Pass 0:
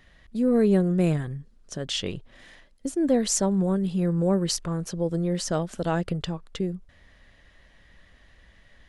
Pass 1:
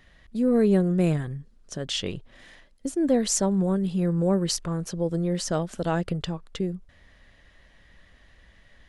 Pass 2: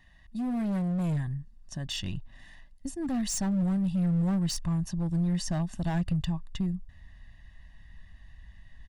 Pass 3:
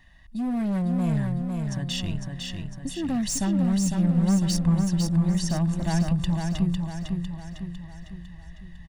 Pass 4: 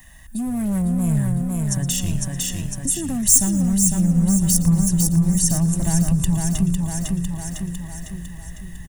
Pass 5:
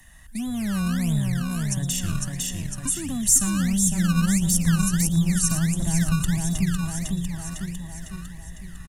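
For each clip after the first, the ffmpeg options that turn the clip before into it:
ffmpeg -i in.wav -af anull out.wav
ffmpeg -i in.wav -af "aecho=1:1:1.1:0.97,asoftclip=type=hard:threshold=-20dB,asubboost=boost=2.5:cutoff=220,volume=-8dB" out.wav
ffmpeg -i in.wav -af "aecho=1:1:503|1006|1509|2012|2515|3018|3521:0.596|0.304|0.155|0.079|0.0403|0.0206|0.0105,volume=3.5dB" out.wav
ffmpeg -i in.wav -filter_complex "[0:a]acrossover=split=180[link_01][link_02];[link_02]acompressor=threshold=-38dB:ratio=3[link_03];[link_01][link_03]amix=inputs=2:normalize=0,aexciter=amount=12.2:drive=4.1:freq=6600,asplit=5[link_04][link_05][link_06][link_07][link_08];[link_05]adelay=116,afreqshift=-140,volume=-16.5dB[link_09];[link_06]adelay=232,afreqshift=-280,volume=-24dB[link_10];[link_07]adelay=348,afreqshift=-420,volume=-31.6dB[link_11];[link_08]adelay=464,afreqshift=-560,volume=-39.1dB[link_12];[link_04][link_09][link_10][link_11][link_12]amix=inputs=5:normalize=0,volume=7.5dB" out.wav
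ffmpeg -i in.wav -filter_complex "[0:a]acrossover=split=390|930|3500[link_01][link_02][link_03][link_04];[link_01]acrusher=samples=23:mix=1:aa=0.000001:lfo=1:lforange=23:lforate=1.5[link_05];[link_02]asoftclip=type=tanh:threshold=-39.5dB[link_06];[link_05][link_06][link_03][link_04]amix=inputs=4:normalize=0,aresample=32000,aresample=44100,volume=-3.5dB" out.wav

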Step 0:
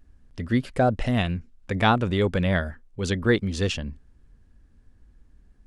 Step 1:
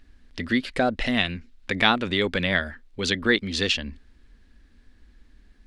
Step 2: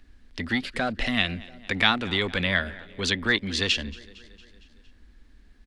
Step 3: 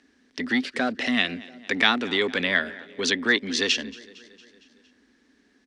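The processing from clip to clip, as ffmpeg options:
ffmpeg -i in.wav -filter_complex "[0:a]equalizer=frequency=125:width_type=o:width=1:gain=-11,equalizer=frequency=250:width_type=o:width=1:gain=5,equalizer=frequency=2000:width_type=o:width=1:gain=8,equalizer=frequency=4000:width_type=o:width=1:gain=11,asplit=2[link_01][link_02];[link_02]acompressor=threshold=-28dB:ratio=6,volume=2dB[link_03];[link_01][link_03]amix=inputs=2:normalize=0,volume=-5.5dB" out.wav
ffmpeg -i in.wav -filter_complex "[0:a]aecho=1:1:229|458|687|916|1145:0.0794|0.0477|0.0286|0.0172|0.0103,acrossover=split=170|1000[link_01][link_02][link_03];[link_02]asoftclip=type=tanh:threshold=-27.5dB[link_04];[link_01][link_04][link_03]amix=inputs=3:normalize=0" out.wav
ffmpeg -i in.wav -af "highpass=240,equalizer=frequency=260:width_type=q:width=4:gain=8,equalizer=frequency=420:width_type=q:width=4:gain=6,equalizer=frequency=1800:width_type=q:width=4:gain=3,equalizer=frequency=5800:width_type=q:width=4:gain=7,lowpass=frequency=9900:width=0.5412,lowpass=frequency=9900:width=1.3066" out.wav

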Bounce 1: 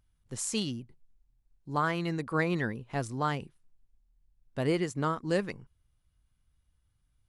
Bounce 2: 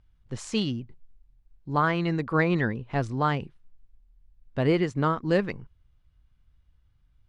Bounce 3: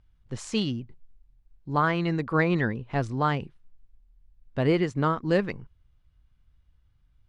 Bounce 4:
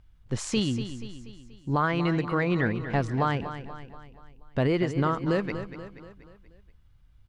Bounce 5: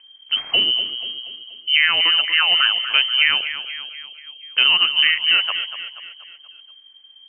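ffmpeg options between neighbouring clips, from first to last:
ffmpeg -i in.wav -af "lowpass=3900,lowshelf=frequency=79:gain=6,volume=5dB" out.wav
ffmpeg -i in.wav -af anull out.wav
ffmpeg -i in.wav -af "alimiter=limit=-20dB:level=0:latency=1:release=431,aecho=1:1:240|480|720|960|1200:0.282|0.141|0.0705|0.0352|0.0176,volume=5dB" out.wav
ffmpeg -i in.wav -af "lowpass=frequency=2700:width_type=q:width=0.5098,lowpass=frequency=2700:width_type=q:width=0.6013,lowpass=frequency=2700:width_type=q:width=0.9,lowpass=frequency=2700:width_type=q:width=2.563,afreqshift=-3200,volume=8.5dB" out.wav

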